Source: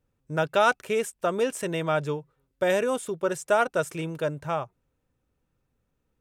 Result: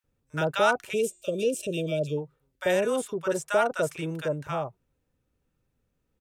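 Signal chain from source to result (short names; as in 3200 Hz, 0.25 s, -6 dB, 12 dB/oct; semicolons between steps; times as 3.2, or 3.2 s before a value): bands offset in time highs, lows 40 ms, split 1000 Hz; 0.93–2.18 spectral gain 650–2300 Hz -27 dB; 0.76–1.85 de-hum 352.1 Hz, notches 25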